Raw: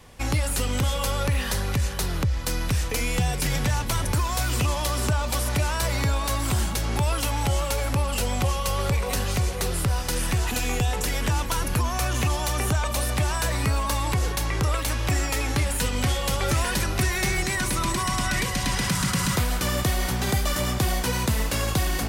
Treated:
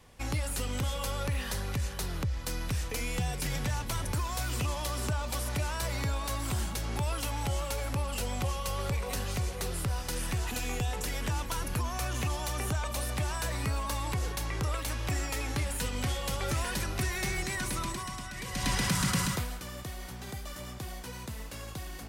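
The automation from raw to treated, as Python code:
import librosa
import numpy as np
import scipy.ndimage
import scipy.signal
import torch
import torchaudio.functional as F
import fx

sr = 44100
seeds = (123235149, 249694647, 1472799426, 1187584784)

y = fx.gain(x, sr, db=fx.line((17.78, -8.0), (18.34, -17.0), (18.67, -4.0), (19.19, -4.0), (19.65, -16.5)))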